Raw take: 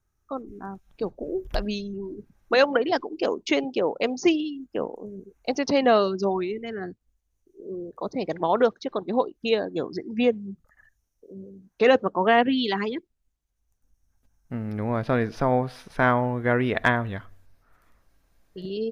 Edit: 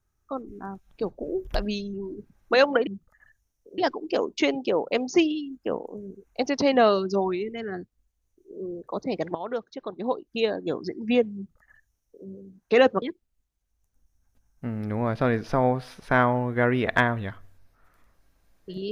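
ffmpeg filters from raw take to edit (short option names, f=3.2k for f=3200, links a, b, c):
-filter_complex "[0:a]asplit=5[a][b][c][d][e];[a]atrim=end=2.872[f];[b]atrim=start=10.438:end=11.352[g];[c]atrim=start=2.868:end=8.44,asetpts=PTS-STARTPTS,afade=t=out:st=5.568:d=0.004:c=hsin:silence=0.199526[h];[d]atrim=start=8.44:end=12.112,asetpts=PTS-STARTPTS,afade=t=in:d=1.37:silence=0.199526[i];[e]atrim=start=12.898[j];[f][g]acrossfade=d=0.004:c1=hsin:c2=hsin[k];[h][i]concat=n=2:v=0:a=1[l];[k][l]acrossfade=d=0.004:c1=hsin:c2=hsin[m];[m][j]acrossfade=d=0.004:c1=hsin:c2=hsin"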